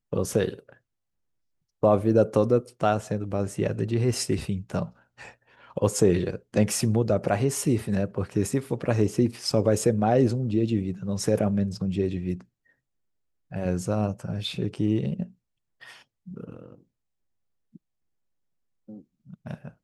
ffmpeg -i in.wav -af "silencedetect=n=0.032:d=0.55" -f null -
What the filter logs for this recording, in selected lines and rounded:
silence_start: 0.54
silence_end: 1.83 | silence_duration: 1.30
silence_start: 4.85
silence_end: 5.77 | silence_duration: 0.92
silence_start: 12.35
silence_end: 13.54 | silence_duration: 1.19
silence_start: 15.23
silence_end: 16.37 | silence_duration: 1.14
silence_start: 16.52
silence_end: 19.46 | silence_duration: 2.94